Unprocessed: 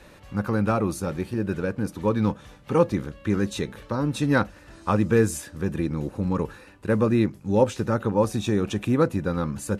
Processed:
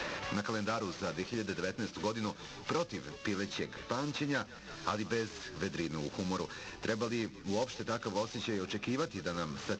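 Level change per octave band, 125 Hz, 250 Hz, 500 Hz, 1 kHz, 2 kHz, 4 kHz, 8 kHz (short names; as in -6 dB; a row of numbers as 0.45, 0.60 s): -16.0, -13.5, -12.5, -9.0, -5.5, -0.5, -7.5 dB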